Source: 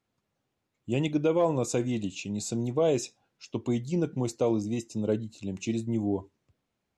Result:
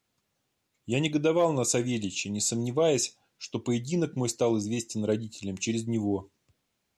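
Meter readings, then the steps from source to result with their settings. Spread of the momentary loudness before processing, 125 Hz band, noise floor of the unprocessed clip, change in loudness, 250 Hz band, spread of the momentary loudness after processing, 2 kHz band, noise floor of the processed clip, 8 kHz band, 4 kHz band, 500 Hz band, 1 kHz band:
9 LU, 0.0 dB, −82 dBFS, +1.0 dB, 0.0 dB, 9 LU, +5.0 dB, −79 dBFS, +8.5 dB, +7.0 dB, +0.5 dB, +1.5 dB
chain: high-shelf EQ 2,200 Hz +9.5 dB

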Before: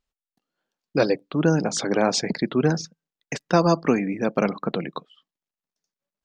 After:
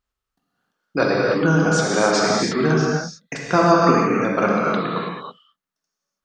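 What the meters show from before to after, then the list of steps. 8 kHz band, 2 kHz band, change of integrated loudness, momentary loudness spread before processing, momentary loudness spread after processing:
+3.5 dB, +9.0 dB, +4.5 dB, 14 LU, 13 LU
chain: parametric band 1,300 Hz +8.5 dB 0.75 octaves
reverb whose tail is shaped and stops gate 350 ms flat, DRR −4 dB
level −2 dB

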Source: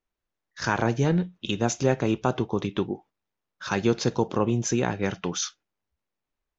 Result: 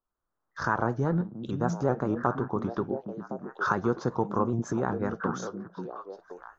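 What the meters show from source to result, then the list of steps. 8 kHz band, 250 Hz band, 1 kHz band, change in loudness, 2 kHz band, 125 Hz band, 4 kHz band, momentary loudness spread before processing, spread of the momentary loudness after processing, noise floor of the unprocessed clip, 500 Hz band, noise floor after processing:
can't be measured, −3.0 dB, +1.0 dB, −4.0 dB, −2.5 dB, −3.5 dB, −16.5 dB, 7 LU, 12 LU, −85 dBFS, −3.0 dB, −83 dBFS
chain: camcorder AGC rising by 18 dB per second
high shelf with overshoot 1,800 Hz −12 dB, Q 3
on a send: echo through a band-pass that steps 530 ms, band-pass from 200 Hz, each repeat 1.4 octaves, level −4 dB
on the sum: pitch modulation by a square or saw wave saw up 5.3 Hz, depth 100 cents
level −5 dB

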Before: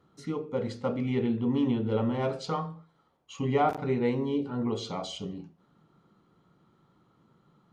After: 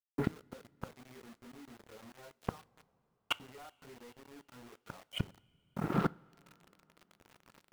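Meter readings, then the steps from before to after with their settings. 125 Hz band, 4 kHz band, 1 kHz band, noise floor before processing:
−9.0 dB, −3.0 dB, −11.5 dB, −68 dBFS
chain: camcorder AGC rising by 21 dB per second
low-pass that shuts in the quiet parts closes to 500 Hz, open at −24 dBFS
high-pass filter 160 Hz 12 dB per octave
reverb reduction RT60 0.98 s
downward expander −54 dBFS
low-pass filter 2,400 Hz 24 dB per octave
parametric band 1,600 Hz +11 dB 0.45 octaves
leveller curve on the samples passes 3
gate with flip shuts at −23 dBFS, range −41 dB
bit reduction 10 bits
coupled-rooms reverb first 0.39 s, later 3.9 s, from −18 dB, DRR 19 dB
level +5.5 dB

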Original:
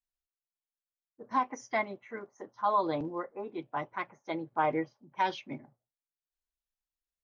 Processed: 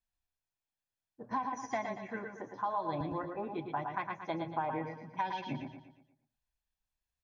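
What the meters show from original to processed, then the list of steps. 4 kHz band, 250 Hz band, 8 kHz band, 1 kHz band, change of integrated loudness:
−4.5 dB, −2.5 dB, can't be measured, −4.0 dB, −4.5 dB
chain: parametric band 84 Hz +7.5 dB 1.6 octaves
comb filter 1.2 ms, depth 40%
single-tap delay 107 ms −9 dB
downward compressor 6 to 1, threshold −34 dBFS, peak gain reduction 13 dB
high-shelf EQ 5,600 Hz −9 dB
repeating echo 118 ms, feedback 44%, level −8 dB
level +2 dB

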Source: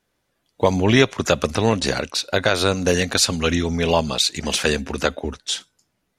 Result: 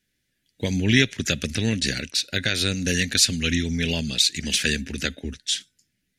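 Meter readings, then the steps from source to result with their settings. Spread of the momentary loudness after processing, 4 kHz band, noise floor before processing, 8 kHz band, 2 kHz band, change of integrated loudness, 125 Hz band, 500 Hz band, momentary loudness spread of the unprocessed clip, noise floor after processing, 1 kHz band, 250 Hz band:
9 LU, 0.0 dB, −73 dBFS, 0.0 dB, −1.5 dB, −2.5 dB, −2.0 dB, −12.0 dB, 8 LU, −75 dBFS, −18.0 dB, −3.0 dB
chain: drawn EQ curve 250 Hz 0 dB, 1,100 Hz −24 dB, 1,700 Hz +2 dB
level −2 dB

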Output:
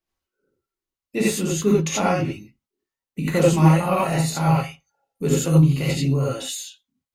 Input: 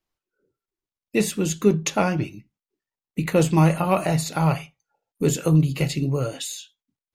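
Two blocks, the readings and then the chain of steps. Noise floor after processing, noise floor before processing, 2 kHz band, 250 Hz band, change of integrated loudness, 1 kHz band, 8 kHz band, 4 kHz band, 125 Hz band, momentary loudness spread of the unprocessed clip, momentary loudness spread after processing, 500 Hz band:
below −85 dBFS, below −85 dBFS, +1.5 dB, +1.5 dB, +2.0 dB, +2.0 dB, +1.5 dB, +2.0 dB, +2.5 dB, 12 LU, 15 LU, +1.5 dB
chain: reverb whose tail is shaped and stops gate 110 ms rising, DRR −5.5 dB
level −5 dB

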